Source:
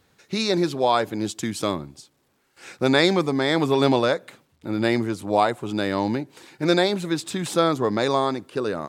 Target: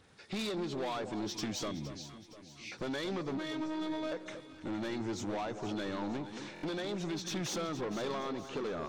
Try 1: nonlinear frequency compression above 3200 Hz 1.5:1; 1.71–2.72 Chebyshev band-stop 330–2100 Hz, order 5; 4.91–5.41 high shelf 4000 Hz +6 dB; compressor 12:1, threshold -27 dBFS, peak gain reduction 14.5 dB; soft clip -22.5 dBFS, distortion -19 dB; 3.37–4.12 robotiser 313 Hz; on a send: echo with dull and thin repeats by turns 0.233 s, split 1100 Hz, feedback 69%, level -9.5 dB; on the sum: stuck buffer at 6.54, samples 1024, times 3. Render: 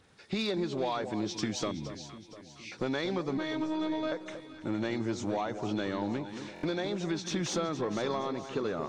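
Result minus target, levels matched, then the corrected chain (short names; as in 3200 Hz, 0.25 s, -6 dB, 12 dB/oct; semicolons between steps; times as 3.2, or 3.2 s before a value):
soft clip: distortion -11 dB
nonlinear frequency compression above 3200 Hz 1.5:1; 1.71–2.72 Chebyshev band-stop 330–2100 Hz, order 5; 4.91–5.41 high shelf 4000 Hz +6 dB; compressor 12:1, threshold -27 dBFS, peak gain reduction 14.5 dB; soft clip -33 dBFS, distortion -8 dB; 3.37–4.12 robotiser 313 Hz; on a send: echo with dull and thin repeats by turns 0.233 s, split 1100 Hz, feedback 69%, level -9.5 dB; on the sum: stuck buffer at 6.54, samples 1024, times 3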